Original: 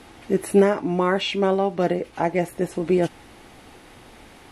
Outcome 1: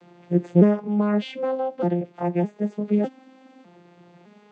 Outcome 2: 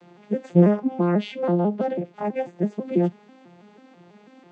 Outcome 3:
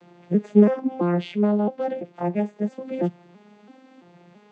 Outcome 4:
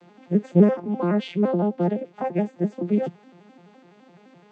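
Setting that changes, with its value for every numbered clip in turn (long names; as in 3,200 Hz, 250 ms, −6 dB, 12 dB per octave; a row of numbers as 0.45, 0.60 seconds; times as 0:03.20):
vocoder with an arpeggio as carrier, a note every: 607, 164, 334, 85 milliseconds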